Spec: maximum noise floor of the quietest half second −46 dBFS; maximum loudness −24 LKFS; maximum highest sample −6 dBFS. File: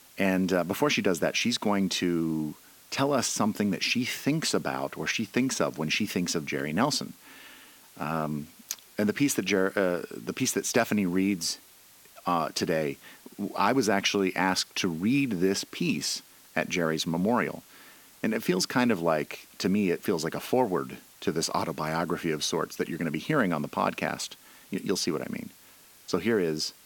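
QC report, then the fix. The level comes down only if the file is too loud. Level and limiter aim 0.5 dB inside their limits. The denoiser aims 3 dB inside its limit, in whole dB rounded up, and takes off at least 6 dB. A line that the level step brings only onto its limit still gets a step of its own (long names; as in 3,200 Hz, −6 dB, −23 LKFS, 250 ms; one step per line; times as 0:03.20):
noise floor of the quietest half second −55 dBFS: in spec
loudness −28.0 LKFS: in spec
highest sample −9.0 dBFS: in spec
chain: no processing needed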